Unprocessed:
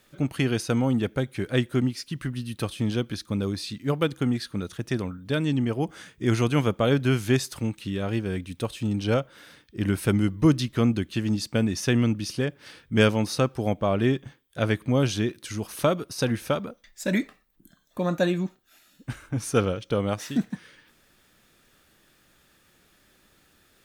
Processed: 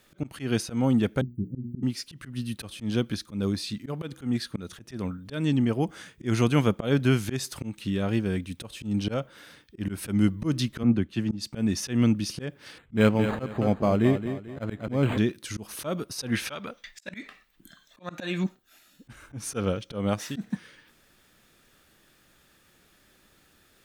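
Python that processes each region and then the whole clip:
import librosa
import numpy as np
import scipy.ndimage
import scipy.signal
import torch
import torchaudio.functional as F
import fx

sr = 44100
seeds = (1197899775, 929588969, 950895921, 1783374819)

y = fx.chain(x, sr, fx.cheby2_bandstop(low_hz=1100.0, high_hz=8900.0, order=4, stop_db=70),
    fx.hum_notches(base_hz=60, count=9), at=(1.21, 1.83))
y = fx.chain(y, sr, fx.high_shelf(hz=4100.0, db=-8.0),
    fx.band_widen(depth_pct=100), at=(10.83, 11.53))
y = fx.chain(y, sr, fx.echo_feedback(ms=220, feedback_pct=39, wet_db=-10),
    fx.resample_linear(factor=8), at=(12.78, 15.18))
y = fx.chain(y, sr, fx.peak_eq(hz=2600.0, db=12.5, octaves=2.9),
    fx.auto_swell(attack_ms=289.0), at=(16.32, 18.44))
y = fx.dynamic_eq(y, sr, hz=210.0, q=3.2, threshold_db=-40.0, ratio=4.0, max_db=4)
y = fx.auto_swell(y, sr, attack_ms=150.0)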